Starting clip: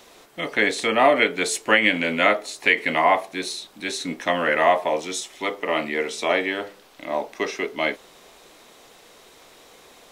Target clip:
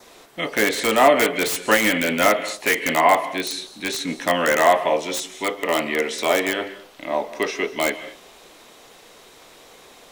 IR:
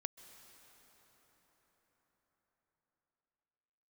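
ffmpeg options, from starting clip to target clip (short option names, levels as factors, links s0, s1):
-filter_complex "[0:a]adynamicequalizer=threshold=0.0141:dfrequency=2900:dqfactor=3.9:tfrequency=2900:tqfactor=3.9:attack=5:release=100:ratio=0.375:range=2:mode=boostabove:tftype=bell[s0];[1:a]atrim=start_sample=2205,afade=t=out:st=0.29:d=0.01,atrim=end_sample=13230[s1];[s0][s1]afir=irnorm=-1:irlink=0,acrossover=split=2000[s2][s3];[s3]aeval=exprs='(mod(15.8*val(0)+1,2)-1)/15.8':c=same[s4];[s2][s4]amix=inputs=2:normalize=0,volume=1.88"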